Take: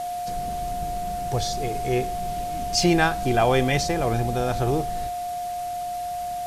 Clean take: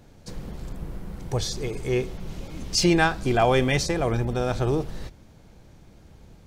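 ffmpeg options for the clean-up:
ffmpeg -i in.wav -af "bandreject=frequency=710:width=30,afwtdn=0.0071" out.wav

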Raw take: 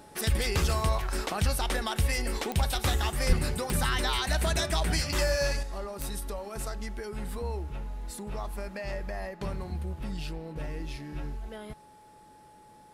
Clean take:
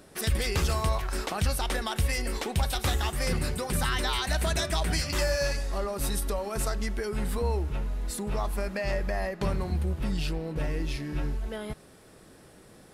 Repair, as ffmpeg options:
ffmpeg -i in.wav -filter_complex "[0:a]adeclick=threshold=4,bandreject=frequency=850:width=30,asplit=3[link_01][link_02][link_03];[link_01]afade=type=out:start_time=3.28:duration=0.02[link_04];[link_02]highpass=frequency=140:width=0.5412,highpass=frequency=140:width=1.3066,afade=type=in:start_time=3.28:duration=0.02,afade=type=out:start_time=3.4:duration=0.02[link_05];[link_03]afade=type=in:start_time=3.4:duration=0.02[link_06];[link_04][link_05][link_06]amix=inputs=3:normalize=0,asetnsamples=nb_out_samples=441:pad=0,asendcmd='5.63 volume volume 6dB',volume=0dB" out.wav

